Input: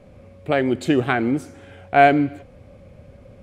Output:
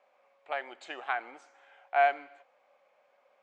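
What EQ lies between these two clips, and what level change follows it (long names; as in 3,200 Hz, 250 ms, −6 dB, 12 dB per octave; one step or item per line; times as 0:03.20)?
elliptic band-pass filter 810–7,300 Hz, stop band 80 dB
spectral tilt −3.5 dB per octave
−7.0 dB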